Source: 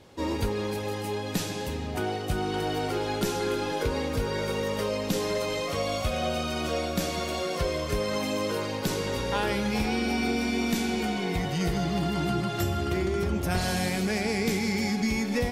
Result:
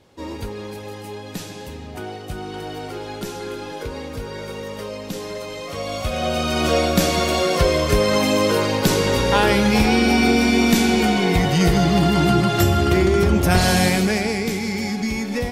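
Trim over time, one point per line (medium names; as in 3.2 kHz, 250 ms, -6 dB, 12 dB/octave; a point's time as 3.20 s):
5.56 s -2 dB
6.69 s +11 dB
13.87 s +11 dB
14.48 s +3 dB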